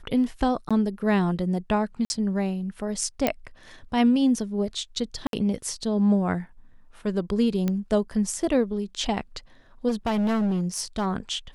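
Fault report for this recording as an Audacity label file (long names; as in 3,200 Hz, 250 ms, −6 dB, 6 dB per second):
0.690000	0.710000	drop-out 16 ms
2.050000	2.100000	drop-out 51 ms
3.270000	3.270000	click −8 dBFS
5.270000	5.330000	drop-out 62 ms
7.680000	7.680000	click −14 dBFS
9.880000	11.070000	clipping −21 dBFS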